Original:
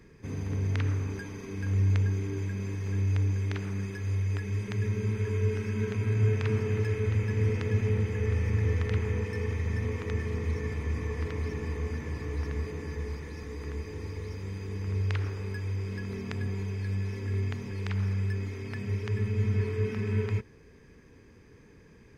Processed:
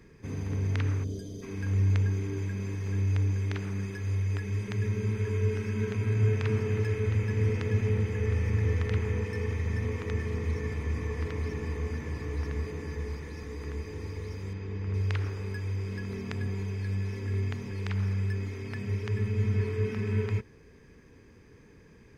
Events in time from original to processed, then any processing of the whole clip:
1.04–1.42 spectral gain 720–3000 Hz -20 dB
14.53–14.94 Bessel low-pass 3600 Hz

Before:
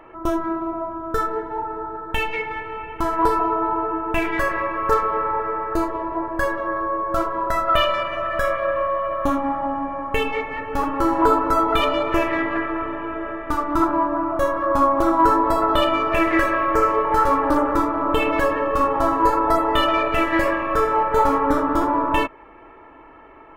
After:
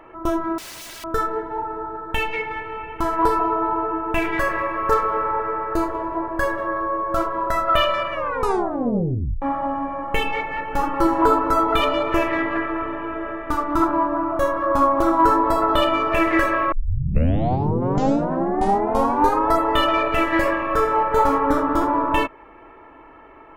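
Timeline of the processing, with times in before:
0.58–1.04 wrapped overs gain 32.5 dB
4.12–6.66 frequency-shifting echo 95 ms, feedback 59%, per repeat +56 Hz, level -22.5 dB
8.12 tape stop 1.30 s
10.03–11.07 comb 5.8 ms, depth 58%
16.72 tape start 2.78 s

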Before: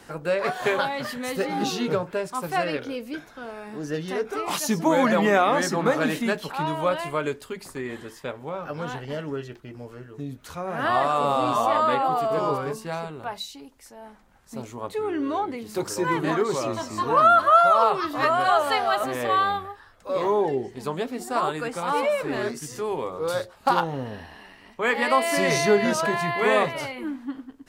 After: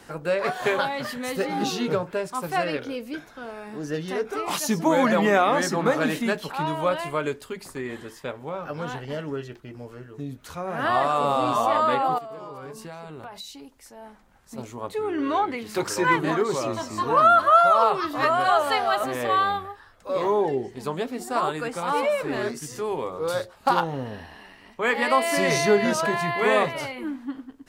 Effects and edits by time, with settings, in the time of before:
12.18–14.58 compressor 16:1, threshold -34 dBFS
15.18–16.16 bell 2000 Hz +8 dB 2.3 oct

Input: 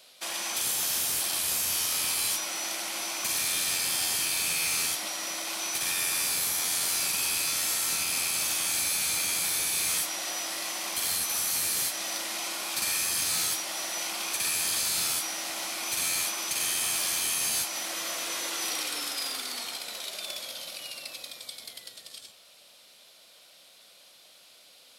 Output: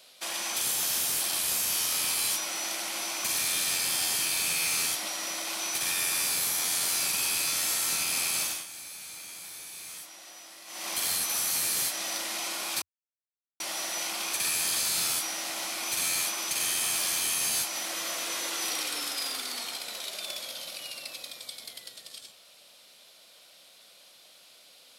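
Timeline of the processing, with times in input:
8.4–10.92 dip -14.5 dB, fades 0.26 s
12.82–13.6 mute
whole clip: bell 87 Hz -7 dB 0.22 oct

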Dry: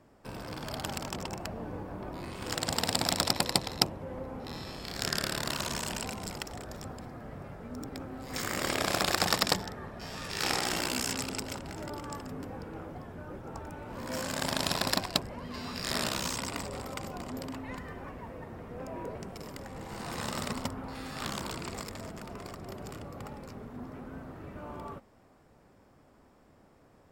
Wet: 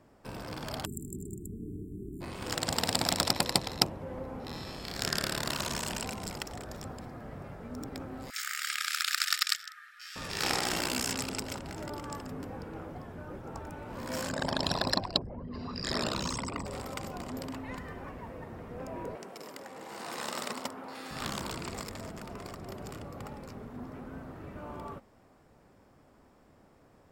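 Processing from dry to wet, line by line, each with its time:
0.85–2.21 spectral delete 440–7100 Hz
8.3–10.16 brick-wall FIR high-pass 1200 Hz
14.29–16.66 formant sharpening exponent 2
19.15–21.11 HPF 310 Hz

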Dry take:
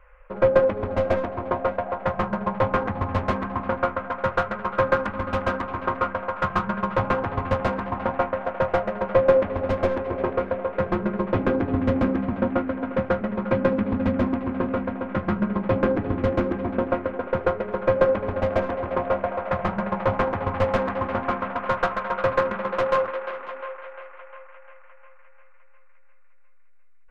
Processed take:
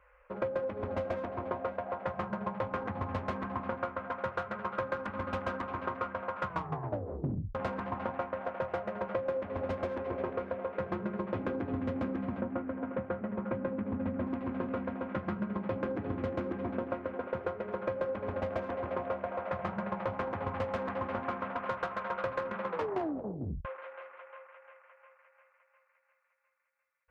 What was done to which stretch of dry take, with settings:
6.47 tape stop 1.08 s
12.41–14.27 air absorption 410 m
22.68 tape stop 0.97 s
whole clip: HPF 61 Hz; compressor 6:1, threshold -24 dBFS; gain -6.5 dB

